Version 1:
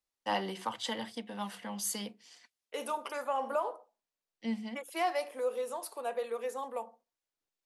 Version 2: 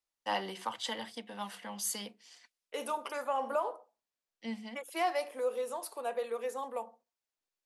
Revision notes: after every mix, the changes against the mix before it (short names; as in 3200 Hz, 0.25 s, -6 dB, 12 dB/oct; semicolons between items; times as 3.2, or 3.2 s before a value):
first voice: add low shelf 320 Hz -7.5 dB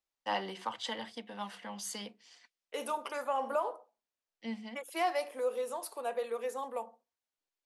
first voice: add air absorption 52 m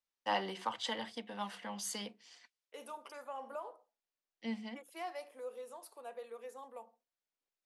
second voice -11.5 dB